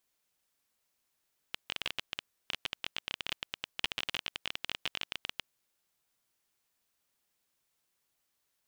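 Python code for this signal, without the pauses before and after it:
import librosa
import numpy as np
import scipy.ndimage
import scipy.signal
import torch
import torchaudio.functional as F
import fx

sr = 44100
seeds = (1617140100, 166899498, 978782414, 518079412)

y = fx.geiger_clicks(sr, seeds[0], length_s=3.93, per_s=19.0, level_db=-16.0)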